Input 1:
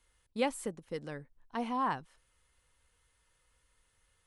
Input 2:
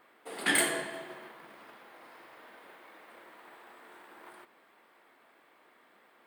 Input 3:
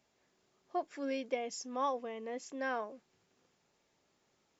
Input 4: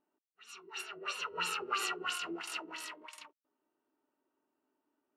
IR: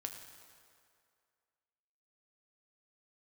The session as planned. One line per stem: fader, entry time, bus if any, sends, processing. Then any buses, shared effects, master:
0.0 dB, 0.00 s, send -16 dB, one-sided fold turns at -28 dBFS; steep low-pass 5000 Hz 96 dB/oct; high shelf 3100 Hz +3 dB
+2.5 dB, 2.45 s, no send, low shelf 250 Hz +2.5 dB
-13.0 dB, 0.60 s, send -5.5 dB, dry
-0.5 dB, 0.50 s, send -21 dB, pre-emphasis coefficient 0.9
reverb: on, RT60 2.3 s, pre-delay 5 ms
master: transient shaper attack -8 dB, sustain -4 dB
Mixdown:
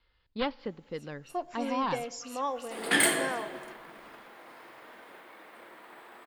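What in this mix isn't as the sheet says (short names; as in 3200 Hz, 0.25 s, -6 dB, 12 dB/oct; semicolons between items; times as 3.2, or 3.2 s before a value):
stem 3 -13.0 dB -> -1.5 dB; stem 4 -0.5 dB -> -7.5 dB; master: missing transient shaper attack -8 dB, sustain -4 dB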